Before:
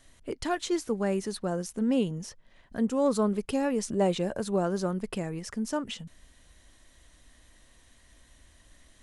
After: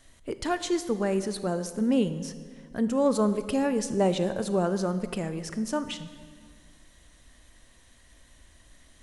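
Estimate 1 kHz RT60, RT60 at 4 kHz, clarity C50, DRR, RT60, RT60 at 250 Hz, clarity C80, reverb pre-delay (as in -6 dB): 1.7 s, 1.4 s, 12.0 dB, 11.5 dB, 1.8 s, 2.1 s, 13.0 dB, 27 ms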